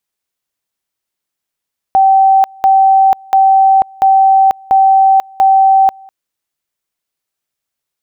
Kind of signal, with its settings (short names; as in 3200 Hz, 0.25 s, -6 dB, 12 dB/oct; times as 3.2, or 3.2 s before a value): two-level tone 773 Hz -4.5 dBFS, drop 28.5 dB, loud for 0.49 s, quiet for 0.20 s, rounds 6